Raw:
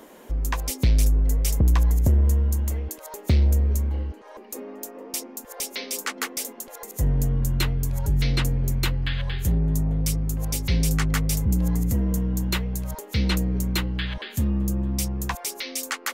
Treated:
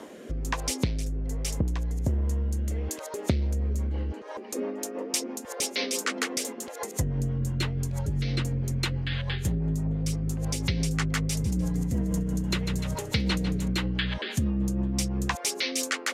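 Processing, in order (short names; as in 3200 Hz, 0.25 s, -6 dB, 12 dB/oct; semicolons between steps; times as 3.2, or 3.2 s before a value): LPF 8400 Hz 12 dB/oct; 11.24–13.68 frequency-shifting echo 0.149 s, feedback 48%, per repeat -31 Hz, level -11 dB; rotary speaker horn 1.2 Hz, later 6 Hz, at 2.67; compressor 5:1, threshold -29 dBFS, peak gain reduction 11 dB; HPF 77 Hz 12 dB/oct; gain +7 dB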